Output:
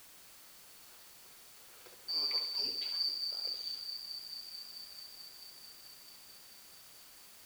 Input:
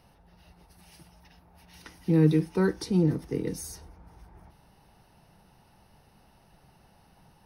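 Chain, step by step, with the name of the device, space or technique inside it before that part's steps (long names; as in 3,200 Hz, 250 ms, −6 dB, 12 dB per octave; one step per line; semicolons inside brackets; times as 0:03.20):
0:02.17–0:02.75: high-shelf EQ 4,300 Hz +10 dB
flutter between parallel walls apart 11.5 metres, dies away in 0.62 s
delay with a low-pass on its return 219 ms, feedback 83%, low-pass 480 Hz, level −5 dB
split-band scrambled radio (band-splitting scrambler in four parts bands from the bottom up 2341; band-pass filter 320–2,900 Hz; white noise bed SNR 14 dB)
level −6 dB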